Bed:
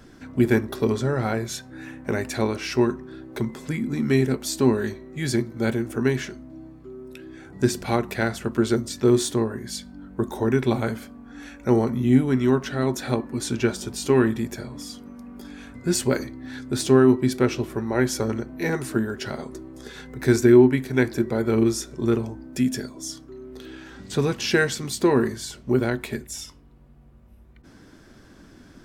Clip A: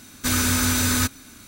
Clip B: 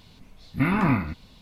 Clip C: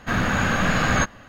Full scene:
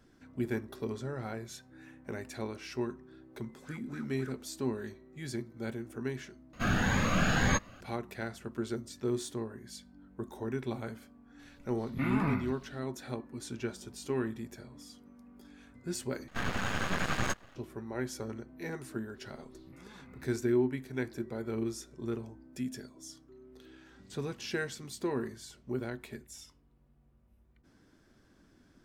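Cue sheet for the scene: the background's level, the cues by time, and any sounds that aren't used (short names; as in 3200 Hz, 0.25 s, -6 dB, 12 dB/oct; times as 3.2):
bed -14.5 dB
3.37 add A -15 dB + wah 3.7 Hz 290–1700 Hz, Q 8
6.53 replace with C -5.5 dB + cascading phaser rising 1.8 Hz
11.39 add B -10 dB
16.28 replace with C -7.5 dB + half-wave rectifier
19.13 add B -16 dB, fades 0.05 s + compressor 12:1, threshold -35 dBFS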